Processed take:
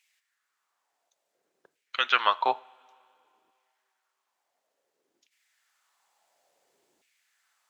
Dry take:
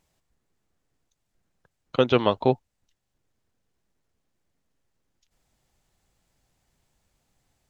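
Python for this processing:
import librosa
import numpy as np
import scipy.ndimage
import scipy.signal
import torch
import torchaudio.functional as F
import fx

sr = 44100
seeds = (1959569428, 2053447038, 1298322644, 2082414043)

y = fx.filter_lfo_highpass(x, sr, shape='saw_down', hz=0.57, low_hz=310.0, high_hz=2400.0, q=3.0)
y = fx.rev_double_slope(y, sr, seeds[0], early_s=0.39, late_s=2.7, knee_db=-20, drr_db=15.5)
y = y * 10.0 ** (1.0 / 20.0)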